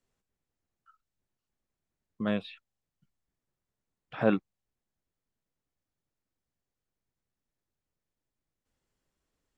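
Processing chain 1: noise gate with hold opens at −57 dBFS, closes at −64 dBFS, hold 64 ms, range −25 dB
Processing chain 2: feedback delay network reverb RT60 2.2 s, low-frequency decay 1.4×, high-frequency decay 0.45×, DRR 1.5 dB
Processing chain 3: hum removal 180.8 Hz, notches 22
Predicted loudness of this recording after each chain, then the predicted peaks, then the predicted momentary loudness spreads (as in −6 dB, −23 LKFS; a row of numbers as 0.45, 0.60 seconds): −31.0, −30.5, −31.5 LKFS; −10.5, −10.5, −11.0 dBFS; 18, 22, 18 LU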